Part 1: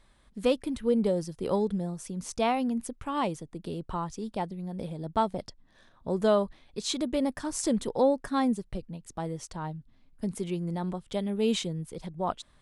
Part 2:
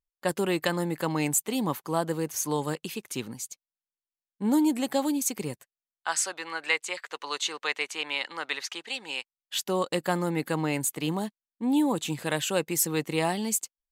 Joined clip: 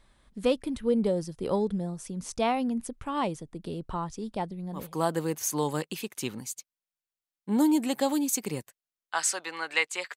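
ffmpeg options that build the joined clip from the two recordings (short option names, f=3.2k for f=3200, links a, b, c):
-filter_complex "[0:a]apad=whole_dur=10.16,atrim=end=10.16,atrim=end=4.95,asetpts=PTS-STARTPTS[a];[1:a]atrim=start=1.64:end=7.09,asetpts=PTS-STARTPTS[b];[a][b]acrossfade=d=0.24:c1=tri:c2=tri"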